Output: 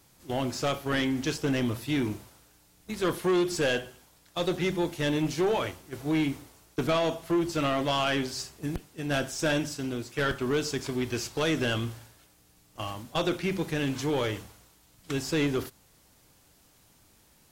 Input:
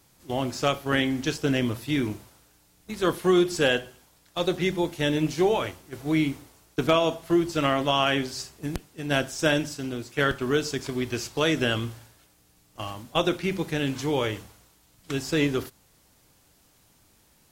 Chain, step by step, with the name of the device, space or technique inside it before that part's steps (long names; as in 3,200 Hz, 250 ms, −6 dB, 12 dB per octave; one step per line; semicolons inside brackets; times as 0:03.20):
saturation between pre-emphasis and de-emphasis (high-shelf EQ 5,900 Hz +7 dB; soft clipping −20.5 dBFS, distortion −11 dB; high-shelf EQ 5,900 Hz −7 dB)